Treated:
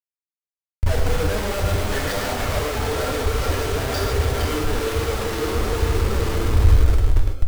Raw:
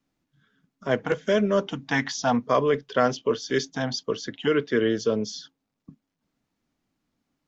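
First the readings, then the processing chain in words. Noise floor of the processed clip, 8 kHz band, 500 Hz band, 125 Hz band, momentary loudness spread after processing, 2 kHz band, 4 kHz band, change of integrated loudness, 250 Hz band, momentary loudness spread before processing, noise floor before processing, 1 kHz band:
under -85 dBFS, n/a, 0.0 dB, +15.0 dB, 5 LU, +2.5 dB, +4.5 dB, +3.0 dB, -1.5 dB, 7 LU, -81 dBFS, +2.5 dB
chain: regenerating reverse delay 0.233 s, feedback 80%, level -9 dB; Bessel low-pass 3200 Hz; Schmitt trigger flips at -37.5 dBFS; flange 1.2 Hz, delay 0.4 ms, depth 6.3 ms, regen +53%; resonant low shelf 110 Hz +12 dB, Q 3; non-linear reverb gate 0.17 s flat, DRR 0.5 dB; gain +3.5 dB

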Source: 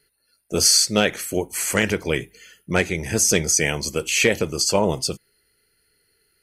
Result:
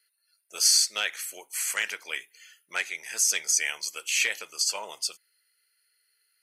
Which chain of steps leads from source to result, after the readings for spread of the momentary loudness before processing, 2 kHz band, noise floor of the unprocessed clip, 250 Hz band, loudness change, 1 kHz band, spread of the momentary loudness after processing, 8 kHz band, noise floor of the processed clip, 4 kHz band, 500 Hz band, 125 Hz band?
11 LU, -5.5 dB, -68 dBFS, under -30 dB, -6.0 dB, -11.5 dB, 14 LU, -4.5 dB, -73 dBFS, -4.5 dB, -22.5 dB, under -40 dB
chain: HPF 1400 Hz 12 dB/oct; gain -4.5 dB

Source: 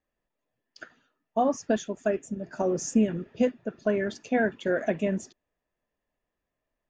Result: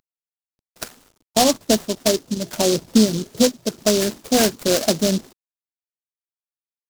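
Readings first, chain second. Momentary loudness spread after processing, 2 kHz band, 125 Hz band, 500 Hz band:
10 LU, +3.5 dB, +8.5 dB, +7.0 dB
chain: CVSD 16 kbps; recorder AGC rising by 5.1 dB/s; noise-modulated delay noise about 4900 Hz, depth 0.15 ms; gain +8.5 dB

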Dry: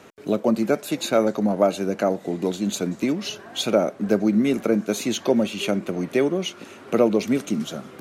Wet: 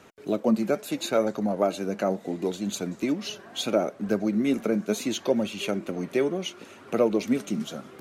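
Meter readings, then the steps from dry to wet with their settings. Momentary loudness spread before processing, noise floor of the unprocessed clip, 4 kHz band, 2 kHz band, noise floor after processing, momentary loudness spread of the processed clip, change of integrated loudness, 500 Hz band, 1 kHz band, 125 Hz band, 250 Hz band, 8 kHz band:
7 LU, -44 dBFS, -4.0 dB, -4.5 dB, -49 dBFS, 7 LU, -4.5 dB, -4.5 dB, -4.0 dB, -5.0 dB, -4.5 dB, -4.5 dB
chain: flange 0.73 Hz, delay 0.6 ms, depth 5 ms, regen +64%

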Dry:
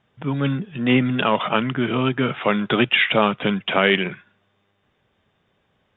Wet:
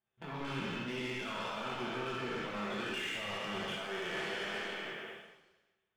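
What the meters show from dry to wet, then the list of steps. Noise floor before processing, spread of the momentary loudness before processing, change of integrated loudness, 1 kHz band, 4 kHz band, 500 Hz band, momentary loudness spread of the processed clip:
-68 dBFS, 7 LU, -18.0 dB, -16.5 dB, n/a, -17.5 dB, 6 LU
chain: spectral trails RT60 2.29 s; gate -42 dBFS, range -8 dB; low shelf 190 Hz -6.5 dB; reverse; compressor, threshold -24 dBFS, peak gain reduction 15 dB; reverse; limiter -20.5 dBFS, peak gain reduction 9.5 dB; sample leveller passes 2; flange 1.9 Hz, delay 4.6 ms, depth 6.8 ms, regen -71%; resonator 870 Hz, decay 0.15 s, harmonics all, mix 70%; non-linear reverb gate 0.31 s falling, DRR -2 dB; gain -2.5 dB

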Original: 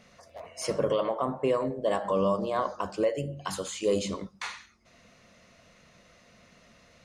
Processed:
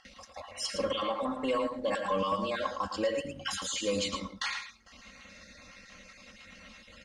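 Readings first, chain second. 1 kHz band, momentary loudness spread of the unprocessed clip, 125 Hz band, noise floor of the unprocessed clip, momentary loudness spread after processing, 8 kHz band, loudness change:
-1.0 dB, 12 LU, -8.0 dB, -60 dBFS, 20 LU, +1.5 dB, -3.0 dB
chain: random spectral dropouts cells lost 29%; gate with hold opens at -53 dBFS; passive tone stack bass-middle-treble 5-5-5; comb 3.7 ms, depth 94%; in parallel at +2.5 dB: compressor, threshold -55 dBFS, peak gain reduction 17.5 dB; on the sum: sample leveller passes 1; upward compressor, threshold -49 dBFS; requantised 12-bit, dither none; air absorption 75 m; on a send: echo 0.111 s -7.5 dB; on the sum: mismatched tape noise reduction decoder only; gain +6.5 dB

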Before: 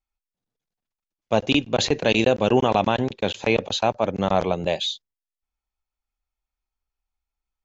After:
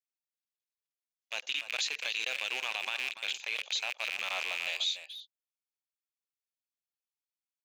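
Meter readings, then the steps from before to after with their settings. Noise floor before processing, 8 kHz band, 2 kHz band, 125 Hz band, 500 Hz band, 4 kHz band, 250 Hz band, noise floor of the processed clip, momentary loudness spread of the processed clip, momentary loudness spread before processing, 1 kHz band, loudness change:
under -85 dBFS, n/a, -4.0 dB, under -40 dB, -27.5 dB, -5.5 dB, under -35 dB, under -85 dBFS, 7 LU, 6 LU, -19.5 dB, -11.0 dB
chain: rattling part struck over -37 dBFS, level -16 dBFS; gate -30 dBFS, range -6 dB; Bessel high-pass 2900 Hz, order 2; limiter -22 dBFS, peak gain reduction 11 dB; speakerphone echo 0.29 s, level -9 dB

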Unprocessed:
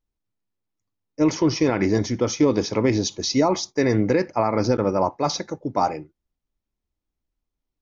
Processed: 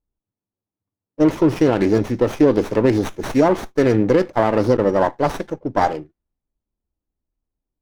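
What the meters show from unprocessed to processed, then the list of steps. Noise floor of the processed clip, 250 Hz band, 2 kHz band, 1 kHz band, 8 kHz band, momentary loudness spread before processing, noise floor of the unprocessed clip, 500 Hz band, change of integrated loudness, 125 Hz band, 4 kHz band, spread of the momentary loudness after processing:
under -85 dBFS, +3.5 dB, +3.0 dB, +3.0 dB, n/a, 5 LU, -84 dBFS, +5.0 dB, +4.0 dB, +2.5 dB, -6.5 dB, 6 LU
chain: dynamic EQ 500 Hz, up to +4 dB, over -30 dBFS, Q 0.75; low-pass opened by the level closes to 1000 Hz, open at -20 dBFS; running maximum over 9 samples; gain +1.5 dB

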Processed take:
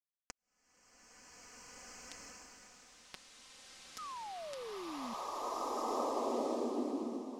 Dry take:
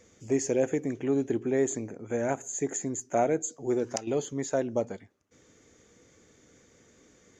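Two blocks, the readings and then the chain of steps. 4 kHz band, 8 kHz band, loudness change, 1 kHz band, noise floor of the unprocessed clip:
-0.5 dB, -15.5 dB, -10.0 dB, -2.5 dB, -62 dBFS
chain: minimum comb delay 4.4 ms; in parallel at -4 dB: soft clip -29.5 dBFS, distortion -8 dB; on the sum: compressor 16:1, threshold -38 dBFS, peak gain reduction 18.5 dB; HPF 120 Hz 24 dB/oct; bit-crush 5-bit; flange 0.54 Hz, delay 2.4 ms, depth 4.9 ms, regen +14%; high shelf 3800 Hz +10.5 dB; painted sound fall, 3.98–5.14, 220–1300 Hz -44 dBFS; LPF 6600 Hz 12 dB/oct; bloom reverb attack 1.95 s, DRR -10.5 dB; gain -1 dB

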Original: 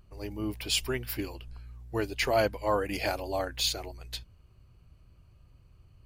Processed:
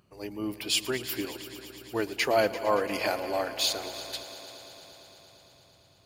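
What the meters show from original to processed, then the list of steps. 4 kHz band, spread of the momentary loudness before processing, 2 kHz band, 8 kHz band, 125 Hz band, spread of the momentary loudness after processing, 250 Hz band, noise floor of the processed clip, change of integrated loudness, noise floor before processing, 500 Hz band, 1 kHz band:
+2.0 dB, 14 LU, +2.0 dB, +2.0 dB, -7.0 dB, 18 LU, +1.5 dB, -60 dBFS, +1.5 dB, -60 dBFS, +2.0 dB, +2.0 dB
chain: HPF 170 Hz 12 dB/oct; on a send: multi-head echo 0.114 s, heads all three, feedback 72%, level -18.5 dB; on the sum: gain +1.5 dB

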